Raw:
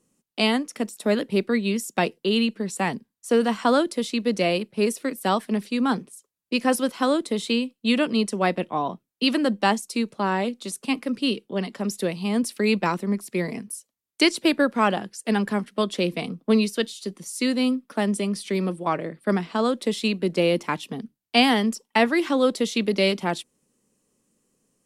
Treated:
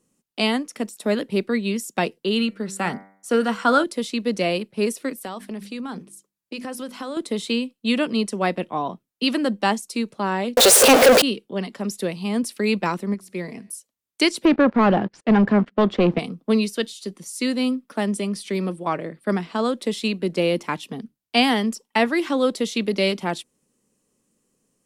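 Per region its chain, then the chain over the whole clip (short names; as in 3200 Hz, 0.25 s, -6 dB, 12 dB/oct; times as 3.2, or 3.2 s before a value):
2.39–3.84 bell 1400 Hz +11.5 dB 0.2 oct + de-hum 96.93 Hz, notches 25
5.22–7.17 notches 50/100/150/200/250/300/350 Hz + compressor, threshold -28 dBFS
10.57–11.22 zero-crossing step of -26.5 dBFS + resonant high-pass 510 Hz, resonance Q 5.5 + sample leveller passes 5
13.14–13.7 high shelf 11000 Hz -7 dB + resonator 94 Hz, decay 1.1 s, mix 40%
14.45–16.19 sample leveller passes 3 + tape spacing loss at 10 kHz 36 dB
whole clip: dry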